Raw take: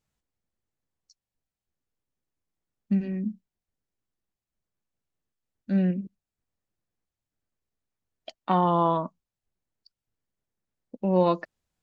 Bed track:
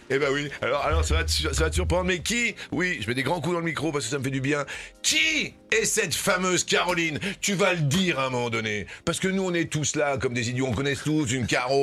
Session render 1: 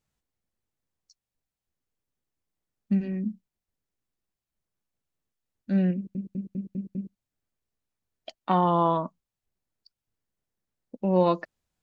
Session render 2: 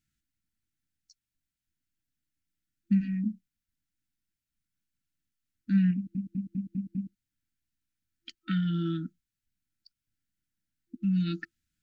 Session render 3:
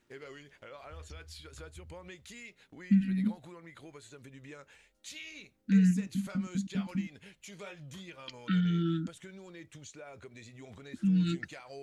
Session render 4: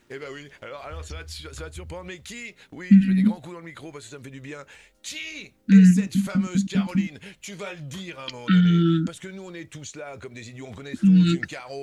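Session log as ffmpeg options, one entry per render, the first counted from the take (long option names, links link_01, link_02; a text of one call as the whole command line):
ffmpeg -i in.wav -filter_complex "[0:a]asplit=7[link_01][link_02][link_03][link_04][link_05][link_06][link_07];[link_01]atrim=end=6.152[link_08];[link_02]atrim=start=5.948:end=6.152[link_09];[link_03]atrim=start=5.948:end=6.152[link_10];[link_04]atrim=start=5.948:end=6.152[link_11];[link_05]atrim=start=5.948:end=6.152[link_12];[link_06]atrim=start=5.948:end=6.152[link_13];[link_07]atrim=start=7.148[link_14];[link_08][link_09]acrossfade=duration=0.004:curve1=hsin:curve2=hsin[link_15];[link_15][link_10]acrossfade=duration=0.004:curve1=hsin:curve2=hsin[link_16];[link_16][link_11]acrossfade=duration=0.004:curve1=hsin:curve2=hsin[link_17];[link_17][link_12]acrossfade=duration=0.004:curve1=hsin:curve2=hsin[link_18];[link_18][link_13]acrossfade=duration=0.004:curve1=hsin:curve2=hsin[link_19];[link_19][link_14]acrossfade=duration=0.004:curve1=hsin:curve2=hsin" out.wav
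ffmpeg -i in.wav -af "afftfilt=real='re*(1-between(b*sr/4096,340,1300))':imag='im*(1-between(b*sr/4096,340,1300))':win_size=4096:overlap=0.75" out.wav
ffmpeg -i in.wav -i bed.wav -filter_complex "[1:a]volume=-24dB[link_01];[0:a][link_01]amix=inputs=2:normalize=0" out.wav
ffmpeg -i in.wav -af "volume=11dB" out.wav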